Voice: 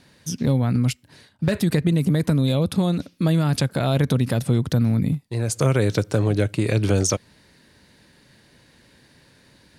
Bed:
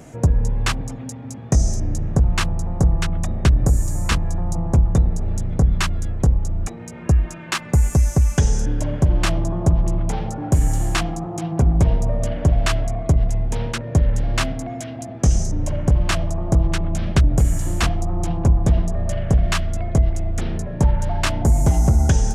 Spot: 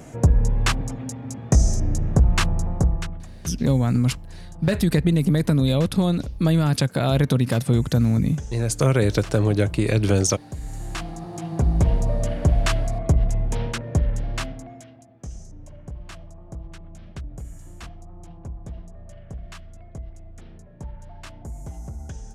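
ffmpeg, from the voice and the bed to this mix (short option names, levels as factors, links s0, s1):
-filter_complex "[0:a]adelay=3200,volume=1.06[s0];[1:a]volume=5.96,afade=t=out:st=2.6:d=0.65:silence=0.133352,afade=t=in:st=10.58:d=1.42:silence=0.16788,afade=t=out:st=13.6:d=1.46:silence=0.125893[s1];[s0][s1]amix=inputs=2:normalize=0"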